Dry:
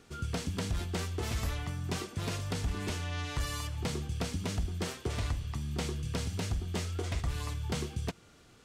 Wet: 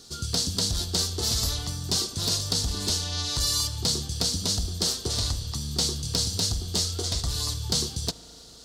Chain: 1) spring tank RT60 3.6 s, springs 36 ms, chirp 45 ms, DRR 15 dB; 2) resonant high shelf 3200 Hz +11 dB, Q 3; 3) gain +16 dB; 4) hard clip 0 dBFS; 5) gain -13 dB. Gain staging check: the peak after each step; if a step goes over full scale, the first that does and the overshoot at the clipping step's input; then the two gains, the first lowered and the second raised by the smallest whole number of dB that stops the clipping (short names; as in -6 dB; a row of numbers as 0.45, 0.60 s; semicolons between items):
-23.0, -10.5, +5.5, 0.0, -13.0 dBFS; step 3, 5.5 dB; step 3 +10 dB, step 5 -7 dB